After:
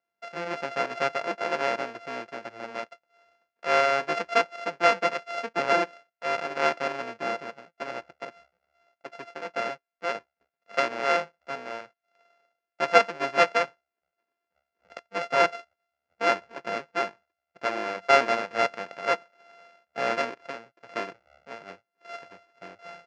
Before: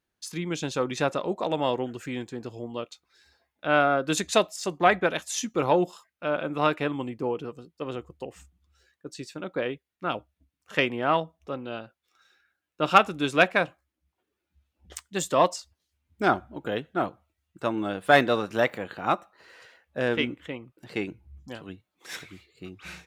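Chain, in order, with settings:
samples sorted by size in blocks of 64 samples
loudspeaker in its box 260–5,300 Hz, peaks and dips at 280 Hz −5 dB, 510 Hz +6 dB, 930 Hz +5 dB, 1,600 Hz +8 dB, 2,400 Hz +6 dB, 3,700 Hz −7 dB
level −3 dB

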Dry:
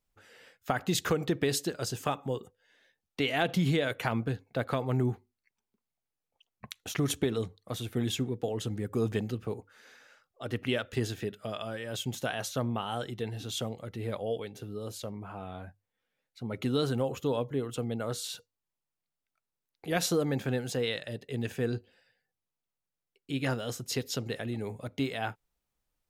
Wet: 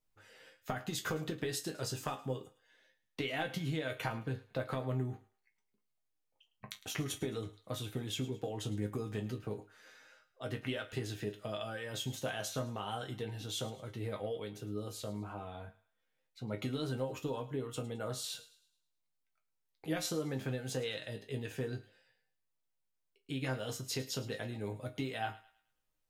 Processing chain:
downward compressor, threshold −30 dBFS, peak gain reduction 7.5 dB
resonators tuned to a chord G#2 major, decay 0.2 s
on a send: feedback echo with a high-pass in the loop 107 ms, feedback 41%, high-pass 820 Hz, level −17 dB
on the sum: level +8 dB

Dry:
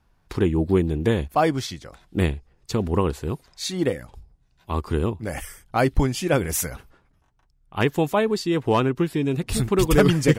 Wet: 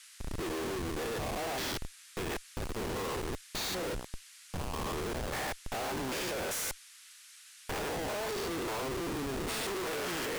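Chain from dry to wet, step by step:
spectrum averaged block by block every 200 ms
Chebyshev high-pass filter 700 Hz, order 2
comparator with hysteresis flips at −39.5 dBFS
noise in a band 1,400–11,000 Hz −55 dBFS

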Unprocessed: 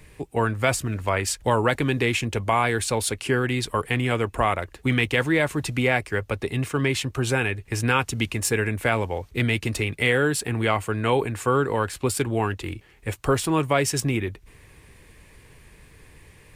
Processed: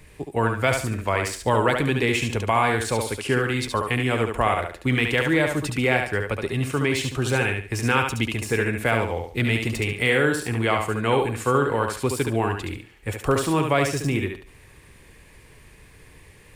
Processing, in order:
de-essing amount 50%
feedback echo with a high-pass in the loop 71 ms, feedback 29%, high-pass 190 Hz, level −4.5 dB

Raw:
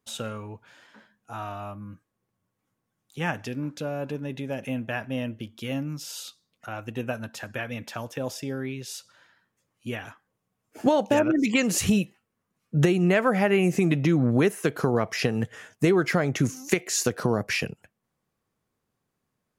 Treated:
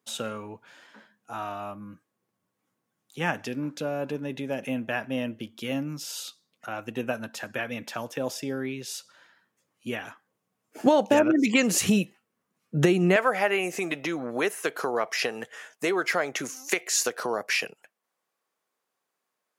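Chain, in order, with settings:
high-pass filter 180 Hz 12 dB per octave, from 0:13.16 540 Hz
level +1.5 dB

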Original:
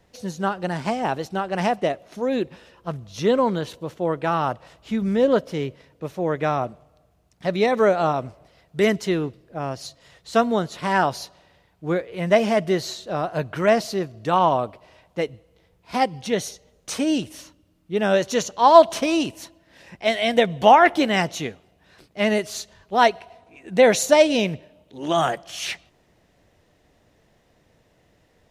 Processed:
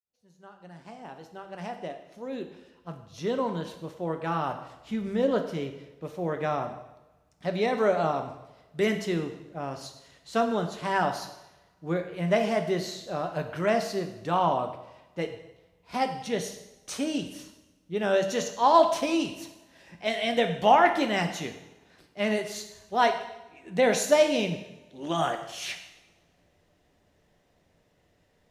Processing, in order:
fade in at the beginning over 4.74 s
coupled-rooms reverb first 0.87 s, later 2.3 s, from −24 dB, DRR 5.5 dB
level −7 dB

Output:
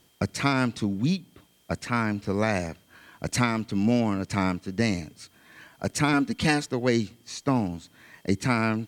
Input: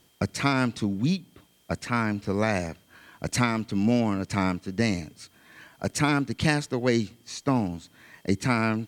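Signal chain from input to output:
0:06.13–0:06.66: comb filter 4.1 ms, depth 65%

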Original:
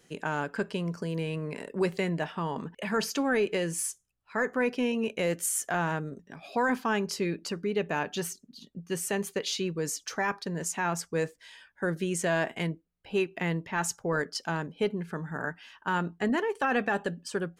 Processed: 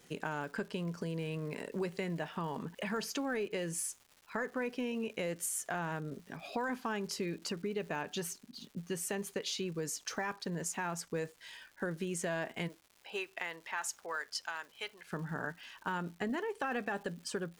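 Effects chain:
0:12.67–0:15.12: high-pass filter 540 Hz → 1,500 Hz 12 dB per octave
downward compressor 3 to 1, threshold −36 dBFS, peak gain reduction 10 dB
surface crackle 340 per second −49 dBFS

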